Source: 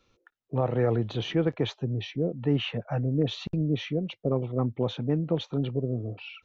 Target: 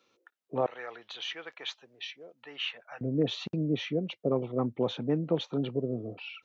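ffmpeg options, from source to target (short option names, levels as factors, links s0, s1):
-af "asetnsamples=n=441:p=0,asendcmd='0.66 highpass f 1400;3.01 highpass f 190',highpass=280"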